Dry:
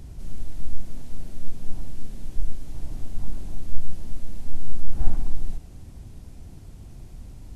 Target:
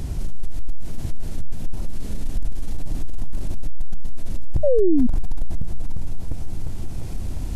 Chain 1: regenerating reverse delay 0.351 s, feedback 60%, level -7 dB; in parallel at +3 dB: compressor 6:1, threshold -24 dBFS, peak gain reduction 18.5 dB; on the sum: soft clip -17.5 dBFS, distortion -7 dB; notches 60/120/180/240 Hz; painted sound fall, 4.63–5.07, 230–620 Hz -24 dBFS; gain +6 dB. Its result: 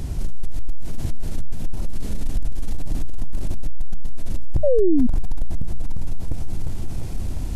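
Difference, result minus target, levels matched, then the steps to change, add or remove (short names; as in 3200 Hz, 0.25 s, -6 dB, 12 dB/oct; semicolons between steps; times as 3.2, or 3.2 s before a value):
compressor: peak gain reduction -7.5 dB
change: compressor 6:1, threshold -33 dBFS, peak gain reduction 26 dB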